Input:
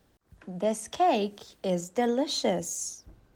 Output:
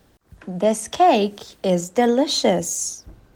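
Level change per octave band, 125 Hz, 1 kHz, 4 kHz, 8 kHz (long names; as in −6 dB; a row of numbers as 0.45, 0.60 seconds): +9.0, +9.0, +9.0, +9.0 decibels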